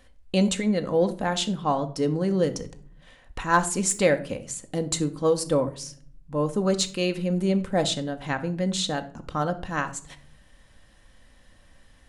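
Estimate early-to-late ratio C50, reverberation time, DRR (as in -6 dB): 15.0 dB, not exponential, 7.5 dB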